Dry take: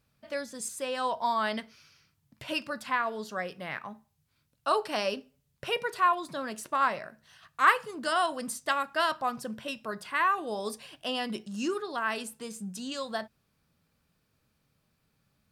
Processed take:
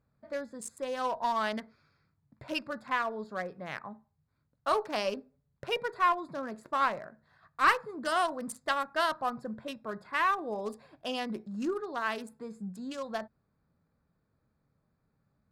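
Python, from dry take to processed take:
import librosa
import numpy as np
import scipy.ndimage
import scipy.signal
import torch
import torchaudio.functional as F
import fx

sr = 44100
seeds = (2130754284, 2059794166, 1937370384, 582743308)

y = fx.wiener(x, sr, points=15)
y = fx.tube_stage(y, sr, drive_db=14.0, bias=0.3)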